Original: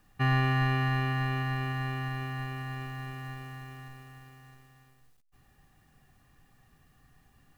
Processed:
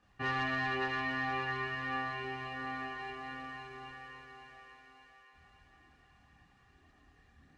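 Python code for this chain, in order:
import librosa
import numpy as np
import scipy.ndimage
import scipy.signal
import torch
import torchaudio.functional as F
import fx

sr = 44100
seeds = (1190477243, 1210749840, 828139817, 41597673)

p1 = scipy.signal.sosfilt(scipy.signal.butter(2, 60.0, 'highpass', fs=sr, output='sos'), x)
p2 = fx.peak_eq(p1, sr, hz=130.0, db=-12.5, octaves=0.56)
p3 = 10.0 ** (-33.0 / 20.0) * np.tanh(p2 / 10.0 ** (-33.0 / 20.0))
p4 = p2 + F.gain(torch.from_numpy(p3), -5.5).numpy()
p5 = fx.chorus_voices(p4, sr, voices=4, hz=0.45, base_ms=26, depth_ms=1.6, mix_pct=60)
p6 = np.clip(10.0 ** (28.0 / 20.0) * p5, -1.0, 1.0) / 10.0 ** (28.0 / 20.0)
p7 = fx.air_absorb(p6, sr, metres=110.0)
y = p7 + fx.echo_thinned(p7, sr, ms=569, feedback_pct=58, hz=450.0, wet_db=-7, dry=0)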